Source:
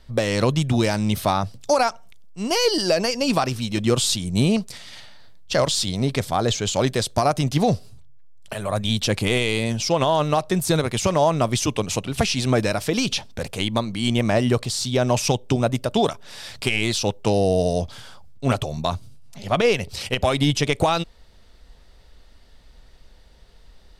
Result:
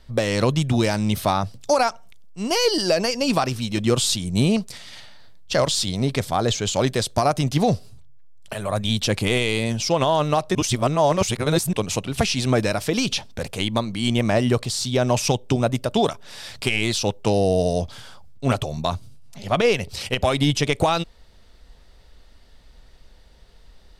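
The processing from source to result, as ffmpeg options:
ffmpeg -i in.wav -filter_complex "[0:a]asplit=3[link_01][link_02][link_03];[link_01]atrim=end=10.552[link_04];[link_02]atrim=start=10.548:end=11.732,asetpts=PTS-STARTPTS,areverse[link_05];[link_03]atrim=start=11.728[link_06];[link_04][link_05]acrossfade=duration=0.004:curve1=hsin:curve2=hsin[link_07];[link_07][link_06]acrossfade=duration=0.004:curve1=hsin:curve2=hsin" out.wav

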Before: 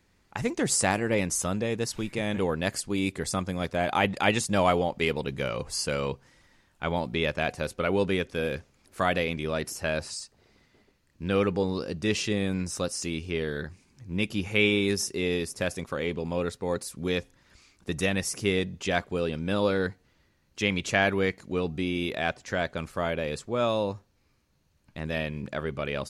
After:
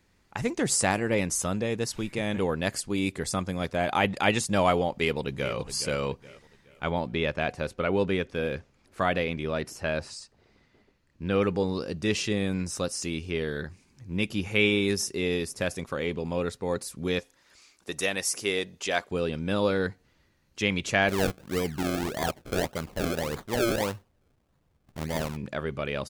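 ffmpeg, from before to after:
ffmpeg -i in.wav -filter_complex "[0:a]asplit=2[link_01][link_02];[link_02]afade=type=in:start_time=4.92:duration=0.01,afade=type=out:start_time=5.54:duration=0.01,aecho=0:1:420|840|1260|1680:0.237137|0.0948549|0.037942|0.0151768[link_03];[link_01][link_03]amix=inputs=2:normalize=0,asettb=1/sr,asplit=3[link_04][link_05][link_06];[link_04]atrim=end=6.904[link_07];[link_05]atrim=start=6.9:end=11.42,asetpts=PTS-STARTPTS,afade=type=in:duration=0.004:curve=qsin,afade=type=out:start_time=4.516:duration=0.004:curve=qsin,lowpass=frequency=3900:poles=1[link_08];[link_06]atrim=start=11.416[link_09];[link_07][link_08]acrossfade=duration=0.004:curve1=hsin:curve2=qsin[link_10];[link_10][link_09]acrossfade=duration=0.004:curve1=qsin:curve2=hsin,asettb=1/sr,asplit=3[link_11][link_12][link_13];[link_11]atrim=end=17.194[link_14];[link_12]atrim=start=17.19:end=19.11,asetpts=PTS-STARTPTS,afade=type=in:duration=0.004:curve=qsin,afade=type=out:start_time=1.916:duration=0.004:curve=qsin,bass=frequency=250:gain=-14,treble=frequency=4000:gain=4[link_15];[link_13]atrim=start=19.106[link_16];[link_14][link_15]acrossfade=duration=0.004:curve1=hsin:curve2=qsin[link_17];[link_17][link_16]acrossfade=duration=0.004:curve1=qsin:curve2=hsin,asplit=3[link_18][link_19][link_20];[link_18]afade=type=out:start_time=21.08:duration=0.02[link_21];[link_19]acrusher=samples=32:mix=1:aa=0.000001:lfo=1:lforange=32:lforate=1.7,afade=type=in:start_time=21.08:duration=0.02,afade=type=out:start_time=25.35:duration=0.02[link_22];[link_20]afade=type=in:start_time=25.35:duration=0.02[link_23];[link_21][link_22][link_23]amix=inputs=3:normalize=0" out.wav

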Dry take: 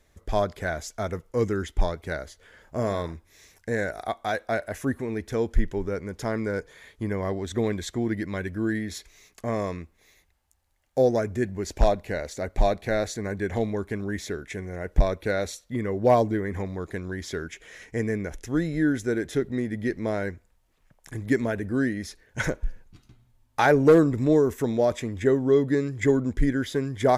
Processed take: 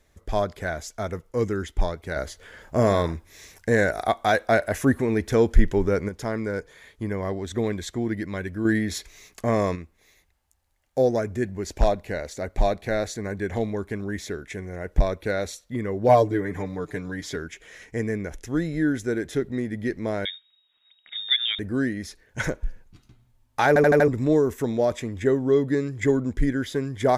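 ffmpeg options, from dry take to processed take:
ffmpeg -i in.wav -filter_complex "[0:a]asettb=1/sr,asplit=3[link_01][link_02][link_03];[link_01]atrim=end=2.164[link_04];[link_02]atrim=start=2.16:end=6.09,asetpts=PTS-STARTPTS,afade=type=in:duration=0.004:curve=qsin,afade=type=out:start_time=3.926:duration=0.004:curve=qsin,acontrast=83[link_05];[link_03]atrim=start=6.086[link_06];[link_04][link_05]acrossfade=duration=0.004:curve1=hsin:curve2=qsin[link_07];[link_07][link_06]acrossfade=duration=0.004:curve1=qsin:curve2=hsin,asettb=1/sr,asplit=3[link_08][link_09][link_10];[link_08]atrim=end=8.654[link_11];[link_09]atrim=start=8.65:end=9.76,asetpts=PTS-STARTPTS,afade=type=in:duration=0.004:curve=qsin,afade=type=out:start_time=1.106:duration=0.004:curve=qsin,acontrast=39[link_12];[link_10]atrim=start=9.756[link_13];[link_11][link_12]acrossfade=duration=0.004:curve1=hsin:curve2=qsin[link_14];[link_14][link_13]acrossfade=duration=0.004:curve1=qsin:curve2=hsin,asettb=1/sr,asplit=3[link_15][link_16][link_17];[link_15]atrim=end=16.084[link_18];[link_16]atrim=start=16.08:end=17.36,asetpts=PTS-STARTPTS,afade=type=in:duration=0.004:curve=qsin,afade=type=out:start_time=1.276:duration=0.004:curve=qsin,aecho=1:1:6.8:0.73,atrim=end_sample=56448[link_19];[link_17]atrim=start=17.356[link_20];[link_18][link_19]acrossfade=duration=0.004:curve1=hsin:curve2=qsin[link_21];[link_21][link_20]acrossfade=duration=0.004:curve1=qsin:curve2=hsin,asettb=1/sr,asplit=3[link_22][link_23][link_24];[link_22]atrim=end=20.254[link_25];[link_23]atrim=start=20.25:end=21.59,asetpts=PTS-STARTPTS,afade=type=in:duration=0.004:curve=qsin,afade=type=out:start_time=1.336:duration=0.004:curve=qsin,lowpass=frequency=3200:width_type=q:width=0.5098,lowpass=frequency=3200:width_type=q:width=0.6013,lowpass=frequency=3200:width_type=q:width=0.9,lowpass=frequency=3200:width_type=q:width=2.563,afreqshift=-3800[link_26];[link_24]atrim=start=21.586[link_27];[link_25][link_26]acrossfade=duration=0.004:curve1=hsin:curve2=qsin[link_28];[link_28][link_27]acrossfade=duration=0.004:curve1=qsin:curve2=hsin,asplit=6[link_29][link_30][link_31][link_32][link_33][link_34];[link_29]atrim=end=23.762[link_35];[link_30]atrim=start=23.678:end=23.762[link_36];[link_31]atrim=start=23.678:end=23.762[link_37];[link_32]atrim=start=23.678:end=23.762[link_38];[link_33]atrim=start=23.678:end=23.762[link_39];[link_34]atrim=start=24.078[link_40];[link_35][link_36]acrossfade=duration=0.004:curve1=hsin:curve2=hsin[link_41];[link_41][link_37]acrossfade=duration=0.004:curve1=hsin:curve2=hsin[link_42];[link_42][link_38]acrossfade=duration=0.004:curve1=hsin:curve2=hsin[link_43];[link_43][link_39]acrossfade=duration=0.004:curve1=hsin:curve2=hsin[link_44];[link_44][link_40]acrossfade=duration=0.004:curve1=hsin:curve2=hsin" out.wav

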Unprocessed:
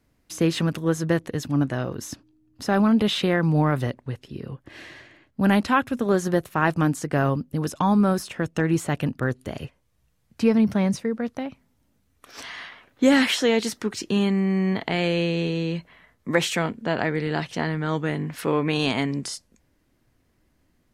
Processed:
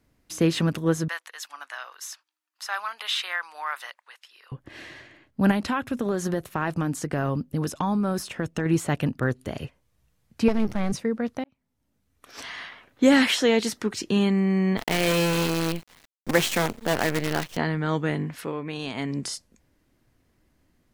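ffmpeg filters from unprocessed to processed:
ffmpeg -i in.wav -filter_complex "[0:a]asettb=1/sr,asplit=3[link_01][link_02][link_03];[link_01]atrim=end=1.084[link_04];[link_02]atrim=start=1.08:end=4.52,asetpts=PTS-STARTPTS,afade=type=in:duration=0.004:curve=qsin,afade=type=out:start_time=3.436:duration=0.004:curve=qsin,highpass=frequency=1000:width=0.5412,highpass=frequency=1000:width=1.3066[link_05];[link_03]atrim=start=4.516[link_06];[link_04][link_05]acrossfade=duration=0.004:curve1=hsin:curve2=qsin[link_07];[link_07][link_06]acrossfade=duration=0.004:curve1=qsin:curve2=hsin,asettb=1/sr,asplit=3[link_08][link_09][link_10];[link_08]atrim=end=5.514[link_11];[link_09]atrim=start=5.51:end=8.66,asetpts=PTS-STARTPTS,afade=type=in:duration=0.004:curve=qsin,afade=type=out:start_time=3.146:duration=0.004:curve=qsin,acompressor=threshold=-21dB:ratio=6:attack=3.2:release=140:knee=1:detection=peak[link_12];[link_10]atrim=start=8.656[link_13];[link_11][link_12]acrossfade=duration=0.004:curve1=hsin:curve2=qsin[link_14];[link_14][link_13]acrossfade=duration=0.004:curve1=qsin:curve2=hsin,asettb=1/sr,asplit=3[link_15][link_16][link_17];[link_15]atrim=end=10.484[link_18];[link_16]atrim=start=10.48:end=10.92,asetpts=PTS-STARTPTS,afade=type=in:duration=0.004:curve=qsin,afade=type=out:start_time=0.436:duration=0.004:curve=qsin,aeval=exprs='max(val(0),0)':channel_layout=same[link_19];[link_17]atrim=start=10.916[link_20];[link_18][link_19]acrossfade=duration=0.004:curve1=hsin:curve2=qsin[link_21];[link_21][link_20]acrossfade=duration=0.004:curve1=qsin:curve2=hsin,asettb=1/sr,asplit=3[link_22][link_23][link_24];[link_22]atrim=end=14.774[link_25];[link_23]atrim=start=14.77:end=17.57,asetpts=PTS-STARTPTS,afade=type=in:duration=0.004:curve=qsin,afade=type=out:start_time=2.796:duration=0.004:curve=qsin,acrusher=bits=5:dc=4:mix=0:aa=0.000001[link_26];[link_24]atrim=start=17.566[link_27];[link_25][link_26]acrossfade=duration=0.004:curve1=hsin:curve2=qsin[link_28];[link_28][link_27]acrossfade=duration=0.004:curve1=qsin:curve2=hsin,asplit=4[link_29][link_30][link_31][link_32];[link_29]atrim=end=11.44,asetpts=PTS-STARTPTS,afade=type=out:start_time=11.436:duration=0.004:curve=hsin[link_33];[link_30]atrim=start=11.44:end=18.53,asetpts=PTS-STARTPTS,afade=type=in:duration=1.02,afade=type=out:start_time=6.77:duration=0.32:silence=0.334965[link_34];[link_31]atrim=start=18.53:end=18.92,asetpts=PTS-STARTPTS,volume=-9.5dB[link_35];[link_32]atrim=start=18.92,asetpts=PTS-STARTPTS,afade=type=in:duration=0.32:silence=0.334965[link_36];[link_33][link_34][link_35][link_36]concat=n=4:v=0:a=1" out.wav

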